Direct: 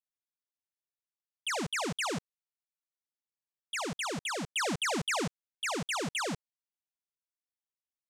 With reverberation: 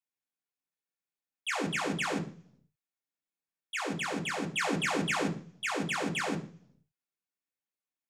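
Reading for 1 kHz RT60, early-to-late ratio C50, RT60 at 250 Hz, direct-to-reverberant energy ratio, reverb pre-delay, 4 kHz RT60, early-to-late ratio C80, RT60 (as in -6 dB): 0.40 s, 12.0 dB, 0.70 s, -2.0 dB, 3 ms, 0.60 s, 17.0 dB, 0.50 s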